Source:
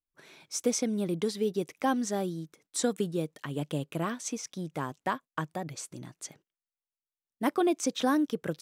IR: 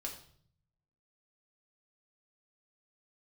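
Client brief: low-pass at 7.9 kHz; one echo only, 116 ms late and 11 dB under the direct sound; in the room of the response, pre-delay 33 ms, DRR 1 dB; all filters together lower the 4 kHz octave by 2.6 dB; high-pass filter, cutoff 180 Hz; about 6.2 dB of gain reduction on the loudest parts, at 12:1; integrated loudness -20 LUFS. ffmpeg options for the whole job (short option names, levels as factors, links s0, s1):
-filter_complex "[0:a]highpass=180,lowpass=7900,equalizer=f=4000:t=o:g=-3,acompressor=threshold=0.0398:ratio=12,aecho=1:1:116:0.282,asplit=2[s0][s1];[1:a]atrim=start_sample=2205,adelay=33[s2];[s1][s2]afir=irnorm=-1:irlink=0,volume=1[s3];[s0][s3]amix=inputs=2:normalize=0,volume=4.47"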